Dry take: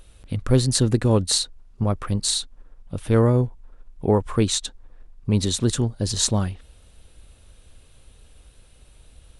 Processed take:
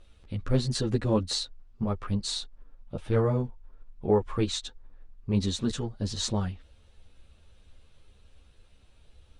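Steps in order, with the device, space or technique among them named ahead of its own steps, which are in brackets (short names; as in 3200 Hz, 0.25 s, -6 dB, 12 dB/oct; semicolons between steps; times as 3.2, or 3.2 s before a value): 2.27–3.04 dynamic EQ 590 Hz, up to +6 dB, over -47 dBFS, Q 0.8; string-machine ensemble chorus (ensemble effect; LPF 5600 Hz 12 dB/oct); gain -3.5 dB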